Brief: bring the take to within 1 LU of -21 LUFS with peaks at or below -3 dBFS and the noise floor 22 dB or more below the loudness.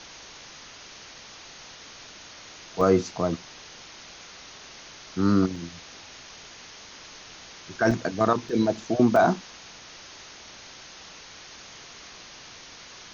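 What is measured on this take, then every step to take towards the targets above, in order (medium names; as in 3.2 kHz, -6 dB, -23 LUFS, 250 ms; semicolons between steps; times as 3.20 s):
dropouts 5; longest dropout 2.9 ms; noise floor -46 dBFS; noise floor target -47 dBFS; loudness -24.5 LUFS; peak level -8.0 dBFS; loudness target -21.0 LUFS
-> interpolate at 2.81/5.56/7.91/8.49/9.16 s, 2.9 ms; noise reduction 6 dB, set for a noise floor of -46 dBFS; trim +3.5 dB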